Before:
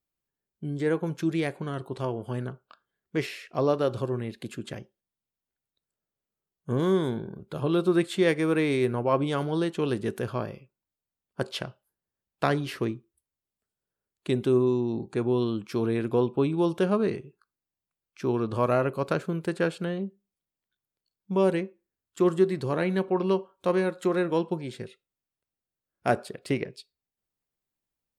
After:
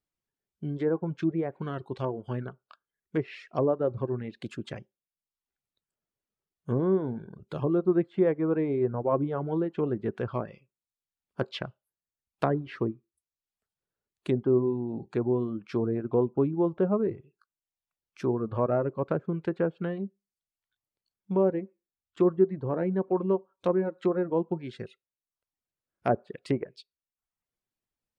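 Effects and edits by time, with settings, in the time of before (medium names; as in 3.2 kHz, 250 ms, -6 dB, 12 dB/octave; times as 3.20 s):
21.39–22.31 s: low-pass 3.6 kHz
whole clip: low-pass that closes with the level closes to 940 Hz, closed at -23.5 dBFS; reverb removal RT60 0.65 s; treble shelf 6 kHz -6 dB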